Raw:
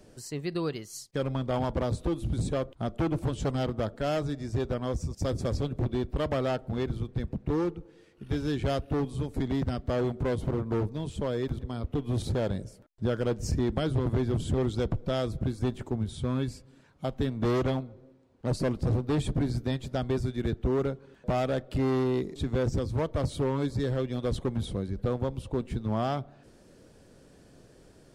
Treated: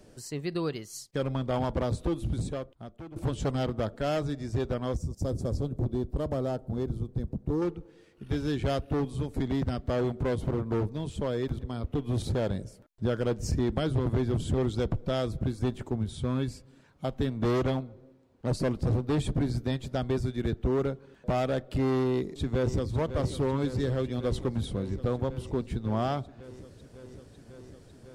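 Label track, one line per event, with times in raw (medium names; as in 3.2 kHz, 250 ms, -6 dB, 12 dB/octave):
2.290000	3.160000	fade out quadratic, to -16.5 dB
4.970000	7.620000	peaking EQ 2.3 kHz -14 dB 2 oct
22.080000	22.930000	echo throw 550 ms, feedback 85%, level -11.5 dB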